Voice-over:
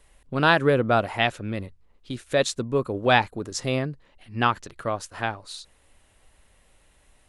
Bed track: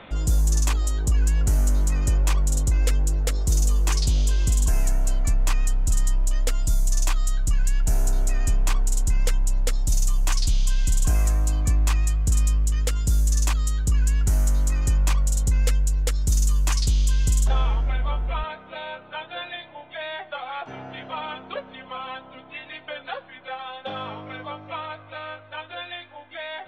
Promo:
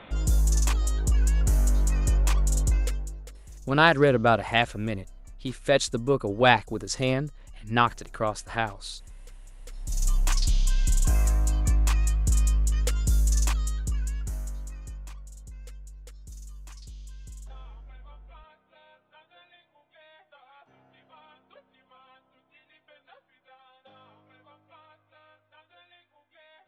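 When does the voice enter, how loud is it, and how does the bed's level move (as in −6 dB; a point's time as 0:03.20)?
3.35 s, 0.0 dB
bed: 0:02.73 −2.5 dB
0:03.45 −26 dB
0:09.55 −26 dB
0:10.08 −2.5 dB
0:13.42 −2.5 dB
0:15.26 −23 dB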